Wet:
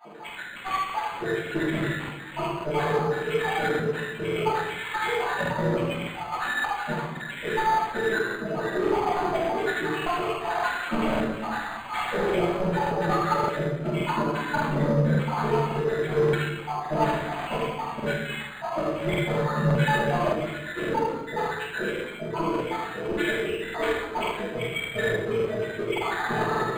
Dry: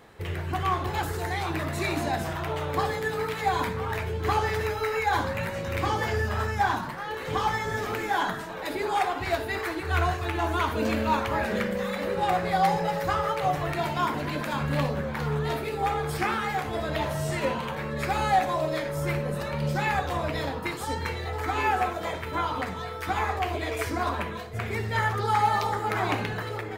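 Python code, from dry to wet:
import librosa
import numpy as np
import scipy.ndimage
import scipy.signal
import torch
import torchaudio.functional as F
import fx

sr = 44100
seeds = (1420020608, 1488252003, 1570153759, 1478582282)

y = fx.spec_dropout(x, sr, seeds[0], share_pct=83)
y = scipy.signal.sosfilt(scipy.signal.butter(4, 170.0, 'highpass', fs=sr, output='sos'), y)
y = fx.high_shelf(y, sr, hz=11000.0, db=9.0)
y = fx.notch_comb(y, sr, f0_hz=270.0)
y = 10.0 ** (-35.0 / 20.0) * np.tanh(y / 10.0 ** (-35.0 / 20.0))
y = y + 10.0 ** (-7.5 / 20.0) * np.pad(y, (int(75 * sr / 1000.0), 0))[:len(y)]
y = fx.room_shoebox(y, sr, seeds[1], volume_m3=410.0, walls='mixed', distance_m=7.6)
y = fx.buffer_crackle(y, sr, first_s=0.85, period_s=0.57, block=2048, kind='repeat')
y = np.interp(np.arange(len(y)), np.arange(len(y))[::8], y[::8])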